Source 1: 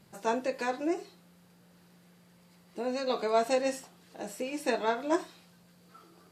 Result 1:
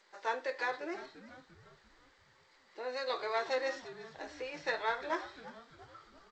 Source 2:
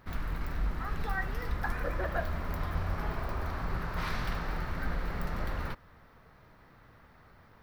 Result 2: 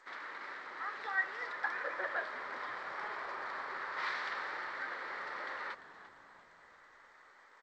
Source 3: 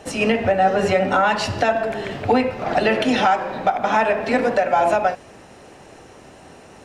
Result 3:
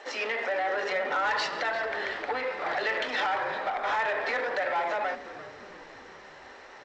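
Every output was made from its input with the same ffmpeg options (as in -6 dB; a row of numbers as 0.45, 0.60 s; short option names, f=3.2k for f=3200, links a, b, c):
-filter_complex "[0:a]alimiter=limit=-14dB:level=0:latency=1:release=44,asoftclip=type=tanh:threshold=-19.5dB,highpass=f=450:w=0.5412,highpass=f=450:w=1.3066,equalizer=f=460:t=q:w=4:g=-4,equalizer=f=680:t=q:w=4:g=-8,equalizer=f=1.9k:t=q:w=4:g=6,equalizer=f=2.7k:t=q:w=4:g=-6,lowpass=f=4.9k:w=0.5412,lowpass=f=4.9k:w=1.3066,asplit=2[a][b];[b]asplit=5[c][d][e][f][g];[c]adelay=345,afreqshift=-120,volume=-15dB[h];[d]adelay=690,afreqshift=-240,volume=-21.2dB[i];[e]adelay=1035,afreqshift=-360,volume=-27.4dB[j];[f]adelay=1380,afreqshift=-480,volume=-33.6dB[k];[g]adelay=1725,afreqshift=-600,volume=-39.8dB[l];[h][i][j][k][l]amix=inputs=5:normalize=0[m];[a][m]amix=inputs=2:normalize=0,volume=21.5dB,asoftclip=hard,volume=-21.5dB" -ar 16000 -c:a g722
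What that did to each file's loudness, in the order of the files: -6.0, -3.5, -10.0 LU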